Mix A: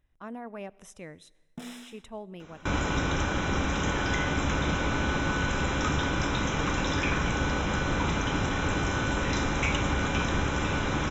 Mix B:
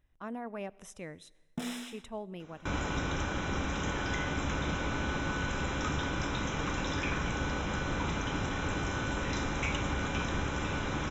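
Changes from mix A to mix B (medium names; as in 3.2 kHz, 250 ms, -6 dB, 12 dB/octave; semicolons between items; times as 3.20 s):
first sound +4.0 dB; second sound -5.5 dB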